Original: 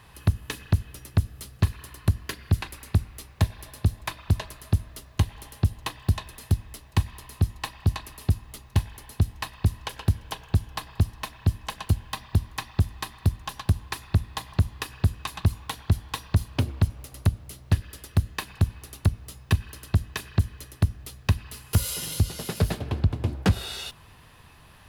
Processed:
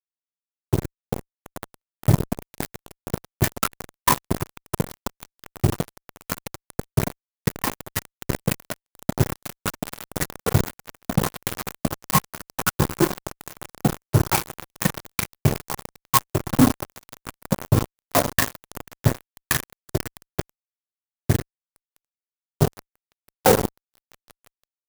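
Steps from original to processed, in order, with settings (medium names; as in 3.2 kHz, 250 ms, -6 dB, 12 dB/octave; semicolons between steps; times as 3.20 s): expander on every frequency bin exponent 3; high-pass 95 Hz 12 dB/octave; reverberation, pre-delay 3 ms, DRR -4.5 dB; in parallel at -4 dB: saturation -21 dBFS, distortion -13 dB; on the sum: wah-wah 0.83 Hz 200–1700 Hz, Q 2.4; peaking EQ 180 Hz -12.5 dB 0.32 oct; echo with a slow build-up 164 ms, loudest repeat 5, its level -13.5 dB; ever faster or slower copies 575 ms, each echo +5 st, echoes 3; fuzz box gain 31 dB, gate -33 dBFS; sampling jitter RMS 0.09 ms; trim +5.5 dB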